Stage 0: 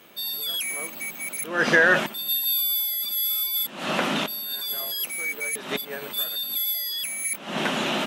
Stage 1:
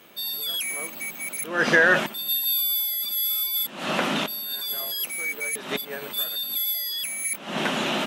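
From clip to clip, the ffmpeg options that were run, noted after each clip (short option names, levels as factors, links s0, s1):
-af anull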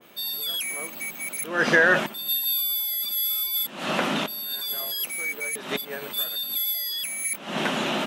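-af "adynamicequalizer=threshold=0.02:dfrequency=1700:dqfactor=0.7:tfrequency=1700:tqfactor=0.7:attack=5:release=100:ratio=0.375:range=1.5:mode=cutabove:tftype=highshelf"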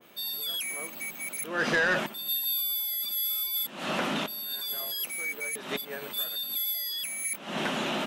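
-af "asoftclip=type=tanh:threshold=0.158,volume=0.668"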